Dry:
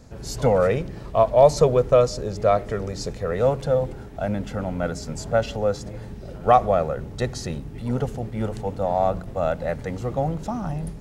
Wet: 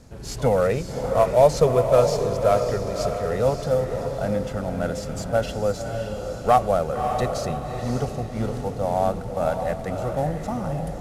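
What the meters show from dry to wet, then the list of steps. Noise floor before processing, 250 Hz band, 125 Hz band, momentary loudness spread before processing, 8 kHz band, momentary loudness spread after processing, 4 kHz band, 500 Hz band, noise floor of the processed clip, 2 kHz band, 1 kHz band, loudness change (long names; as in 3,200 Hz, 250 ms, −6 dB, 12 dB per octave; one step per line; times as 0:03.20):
−38 dBFS, 0.0 dB, 0.0 dB, 13 LU, +1.0 dB, 10 LU, +0.5 dB, 0.0 dB, −34 dBFS, 0.0 dB, 0.0 dB, 0.0 dB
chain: variable-slope delta modulation 64 kbit/s
feedback delay with all-pass diffusion 576 ms, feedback 44%, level −6 dB
level −1 dB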